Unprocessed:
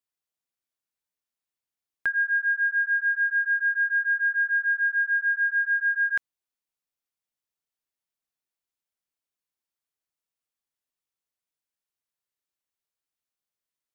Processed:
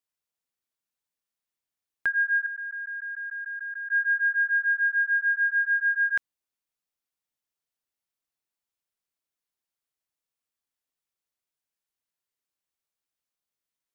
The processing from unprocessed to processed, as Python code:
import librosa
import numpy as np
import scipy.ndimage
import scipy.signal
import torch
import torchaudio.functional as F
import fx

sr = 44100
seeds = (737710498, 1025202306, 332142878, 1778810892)

y = fx.level_steps(x, sr, step_db=17, at=(2.46, 3.92))